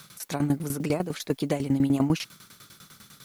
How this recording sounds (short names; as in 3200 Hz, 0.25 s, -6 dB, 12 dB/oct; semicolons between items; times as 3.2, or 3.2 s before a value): a quantiser's noise floor 10-bit, dither triangular; tremolo saw down 10 Hz, depth 85%